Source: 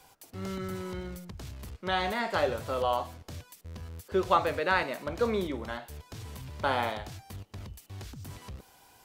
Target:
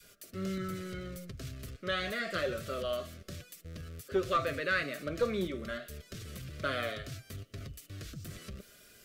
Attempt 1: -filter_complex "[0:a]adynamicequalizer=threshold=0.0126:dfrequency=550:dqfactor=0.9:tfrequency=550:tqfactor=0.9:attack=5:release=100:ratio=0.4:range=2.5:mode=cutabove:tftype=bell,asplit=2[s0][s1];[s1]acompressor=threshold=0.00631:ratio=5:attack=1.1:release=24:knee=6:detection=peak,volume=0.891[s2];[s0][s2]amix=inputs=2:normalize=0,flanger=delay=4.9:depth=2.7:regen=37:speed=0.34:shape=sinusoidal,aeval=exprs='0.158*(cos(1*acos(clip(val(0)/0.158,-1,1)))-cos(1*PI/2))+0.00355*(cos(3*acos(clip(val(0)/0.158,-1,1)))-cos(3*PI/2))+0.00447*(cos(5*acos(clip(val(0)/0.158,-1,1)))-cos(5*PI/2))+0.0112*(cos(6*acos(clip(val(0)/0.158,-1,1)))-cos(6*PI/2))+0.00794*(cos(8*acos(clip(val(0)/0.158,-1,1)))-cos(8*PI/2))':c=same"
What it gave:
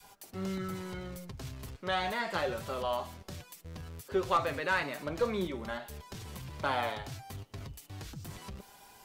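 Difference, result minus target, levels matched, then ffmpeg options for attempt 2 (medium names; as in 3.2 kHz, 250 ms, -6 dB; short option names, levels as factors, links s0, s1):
1 kHz band +4.0 dB
-filter_complex "[0:a]adynamicequalizer=threshold=0.0126:dfrequency=550:dqfactor=0.9:tfrequency=550:tqfactor=0.9:attack=5:release=100:ratio=0.4:range=2.5:mode=cutabove:tftype=bell,asuperstop=centerf=880:order=8:qfactor=1.9,asplit=2[s0][s1];[s1]acompressor=threshold=0.00631:ratio=5:attack=1.1:release=24:knee=6:detection=peak,volume=0.891[s2];[s0][s2]amix=inputs=2:normalize=0,flanger=delay=4.9:depth=2.7:regen=37:speed=0.34:shape=sinusoidal,aeval=exprs='0.158*(cos(1*acos(clip(val(0)/0.158,-1,1)))-cos(1*PI/2))+0.00355*(cos(3*acos(clip(val(0)/0.158,-1,1)))-cos(3*PI/2))+0.00447*(cos(5*acos(clip(val(0)/0.158,-1,1)))-cos(5*PI/2))+0.0112*(cos(6*acos(clip(val(0)/0.158,-1,1)))-cos(6*PI/2))+0.00794*(cos(8*acos(clip(val(0)/0.158,-1,1)))-cos(8*PI/2))':c=same"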